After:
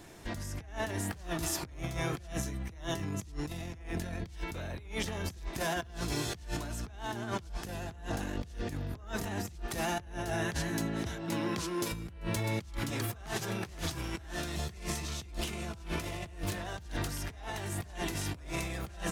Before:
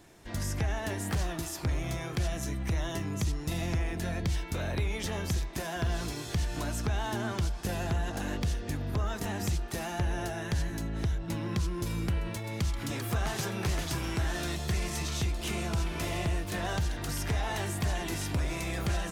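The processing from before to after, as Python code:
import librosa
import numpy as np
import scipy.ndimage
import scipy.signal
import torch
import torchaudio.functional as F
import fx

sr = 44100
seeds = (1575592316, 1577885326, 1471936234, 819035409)

y = fx.highpass(x, sr, hz=fx.line((10.45, 120.0), (11.91, 300.0)), slope=12, at=(10.45, 11.91), fade=0.02)
y = fx.over_compress(y, sr, threshold_db=-36.0, ratio=-0.5)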